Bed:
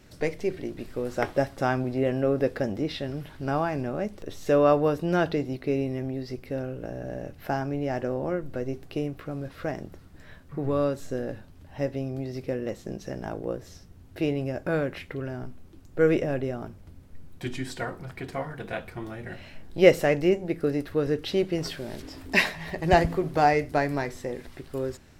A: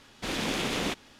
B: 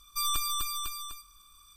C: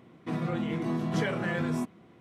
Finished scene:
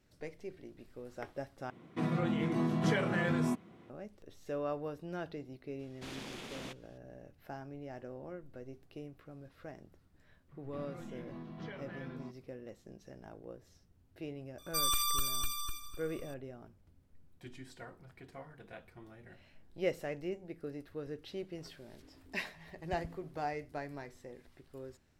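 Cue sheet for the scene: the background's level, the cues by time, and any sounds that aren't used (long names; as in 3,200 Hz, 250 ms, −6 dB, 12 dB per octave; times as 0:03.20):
bed −17 dB
0:01.70: overwrite with C −1.5 dB
0:05.79: mix in A −15.5 dB + speech leveller
0:10.46: mix in C −16.5 dB, fades 0.05 s + low-pass filter 5,000 Hz 24 dB per octave
0:14.58: mix in B −2 dB + echo with a time of its own for lows and highs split 2,600 Hz, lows 251 ms, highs 83 ms, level −7 dB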